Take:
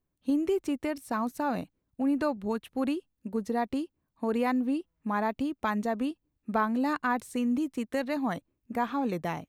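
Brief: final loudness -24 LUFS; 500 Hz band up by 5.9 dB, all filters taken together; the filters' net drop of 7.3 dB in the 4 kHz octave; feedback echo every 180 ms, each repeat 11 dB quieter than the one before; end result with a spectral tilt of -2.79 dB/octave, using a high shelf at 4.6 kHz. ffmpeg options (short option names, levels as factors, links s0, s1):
-af "equalizer=f=500:t=o:g=7.5,equalizer=f=4000:t=o:g=-8,highshelf=f=4600:g=-5,aecho=1:1:180|360|540:0.282|0.0789|0.0221,volume=1.58"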